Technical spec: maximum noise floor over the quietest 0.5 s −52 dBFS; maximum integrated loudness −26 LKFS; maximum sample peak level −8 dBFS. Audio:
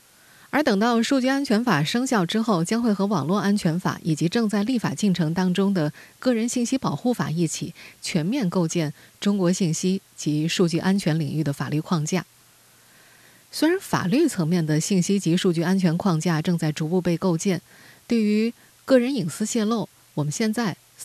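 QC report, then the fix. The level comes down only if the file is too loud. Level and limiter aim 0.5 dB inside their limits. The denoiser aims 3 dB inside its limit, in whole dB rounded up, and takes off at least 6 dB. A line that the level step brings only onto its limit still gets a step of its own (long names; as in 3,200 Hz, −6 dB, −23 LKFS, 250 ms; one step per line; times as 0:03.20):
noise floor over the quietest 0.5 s −55 dBFS: in spec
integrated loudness −23.0 LKFS: out of spec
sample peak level −4.5 dBFS: out of spec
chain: level −3.5 dB
brickwall limiter −8.5 dBFS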